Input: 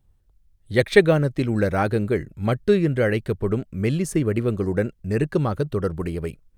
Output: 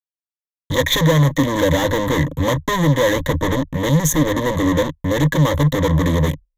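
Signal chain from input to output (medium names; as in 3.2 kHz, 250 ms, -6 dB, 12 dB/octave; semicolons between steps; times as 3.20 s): fuzz box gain 36 dB, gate -42 dBFS; rippled EQ curve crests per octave 1.1, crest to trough 17 dB; 1.35–3.55 s: three bands compressed up and down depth 40%; trim -4.5 dB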